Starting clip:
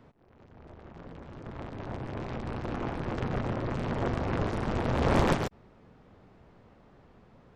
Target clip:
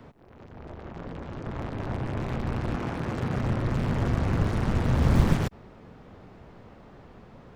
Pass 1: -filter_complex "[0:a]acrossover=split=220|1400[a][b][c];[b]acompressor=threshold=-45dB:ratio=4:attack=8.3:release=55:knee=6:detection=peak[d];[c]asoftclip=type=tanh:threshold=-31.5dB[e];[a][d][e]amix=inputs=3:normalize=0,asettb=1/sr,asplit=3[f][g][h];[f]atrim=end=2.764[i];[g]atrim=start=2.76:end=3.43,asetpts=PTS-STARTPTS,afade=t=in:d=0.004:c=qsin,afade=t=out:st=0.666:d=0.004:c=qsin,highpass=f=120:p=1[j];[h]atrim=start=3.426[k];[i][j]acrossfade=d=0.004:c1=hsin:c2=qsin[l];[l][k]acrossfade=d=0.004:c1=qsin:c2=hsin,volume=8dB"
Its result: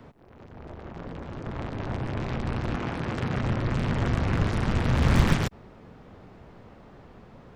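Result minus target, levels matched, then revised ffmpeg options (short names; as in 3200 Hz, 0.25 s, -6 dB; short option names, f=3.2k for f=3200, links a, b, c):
soft clip: distortion -8 dB
-filter_complex "[0:a]acrossover=split=220|1400[a][b][c];[b]acompressor=threshold=-45dB:ratio=4:attack=8.3:release=55:knee=6:detection=peak[d];[c]asoftclip=type=tanh:threshold=-43.5dB[e];[a][d][e]amix=inputs=3:normalize=0,asettb=1/sr,asplit=3[f][g][h];[f]atrim=end=2.764[i];[g]atrim=start=2.76:end=3.43,asetpts=PTS-STARTPTS,afade=t=in:d=0.004:c=qsin,afade=t=out:st=0.666:d=0.004:c=qsin,highpass=f=120:p=1[j];[h]atrim=start=3.426[k];[i][j]acrossfade=d=0.004:c1=hsin:c2=qsin[l];[l][k]acrossfade=d=0.004:c1=qsin:c2=hsin,volume=8dB"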